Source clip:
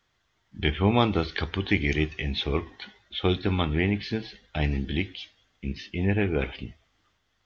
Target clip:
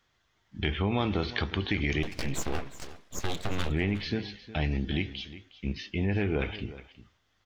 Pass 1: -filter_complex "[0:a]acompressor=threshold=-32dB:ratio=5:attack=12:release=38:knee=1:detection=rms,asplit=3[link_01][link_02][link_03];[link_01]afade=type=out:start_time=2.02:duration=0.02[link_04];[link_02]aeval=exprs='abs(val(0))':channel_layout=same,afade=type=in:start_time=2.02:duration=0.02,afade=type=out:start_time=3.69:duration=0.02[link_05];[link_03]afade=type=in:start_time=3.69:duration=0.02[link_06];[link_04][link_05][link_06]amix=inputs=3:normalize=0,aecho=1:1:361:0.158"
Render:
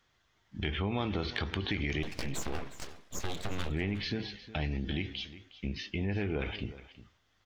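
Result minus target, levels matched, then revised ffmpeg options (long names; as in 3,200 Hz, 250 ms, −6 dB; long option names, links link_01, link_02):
downward compressor: peak gain reduction +5 dB
-filter_complex "[0:a]acompressor=threshold=-26dB:ratio=5:attack=12:release=38:knee=1:detection=rms,asplit=3[link_01][link_02][link_03];[link_01]afade=type=out:start_time=2.02:duration=0.02[link_04];[link_02]aeval=exprs='abs(val(0))':channel_layout=same,afade=type=in:start_time=2.02:duration=0.02,afade=type=out:start_time=3.69:duration=0.02[link_05];[link_03]afade=type=in:start_time=3.69:duration=0.02[link_06];[link_04][link_05][link_06]amix=inputs=3:normalize=0,aecho=1:1:361:0.158"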